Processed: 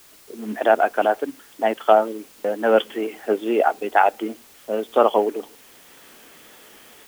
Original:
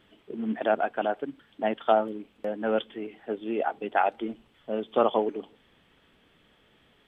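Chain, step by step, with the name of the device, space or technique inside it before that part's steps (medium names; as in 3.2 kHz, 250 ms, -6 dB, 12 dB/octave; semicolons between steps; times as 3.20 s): dictaphone (band-pass 300–3300 Hz; level rider gain up to 15.5 dB; wow and flutter; white noise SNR 28 dB); trim -1 dB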